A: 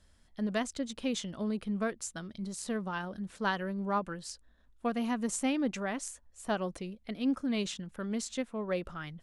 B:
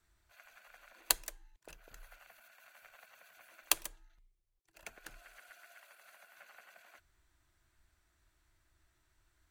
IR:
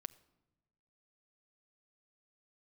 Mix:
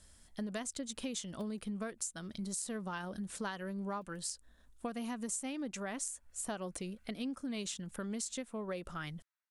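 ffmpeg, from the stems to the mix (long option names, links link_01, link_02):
-filter_complex "[0:a]equalizer=frequency=9200:width=0.77:gain=12,volume=1.5dB,asplit=2[link_01][link_02];[1:a]highpass=950,highshelf=frequency=4600:gain=-10.5,aeval=exprs='0.0335*(abs(mod(val(0)/0.0335+3,4)-2)-1)':channel_layout=same,adelay=300,volume=-15dB[link_03];[link_02]apad=whole_len=432559[link_04];[link_03][link_04]sidechaincompress=threshold=-39dB:ratio=8:attack=16:release=241[link_05];[link_01][link_05]amix=inputs=2:normalize=0,acompressor=threshold=-37dB:ratio=6"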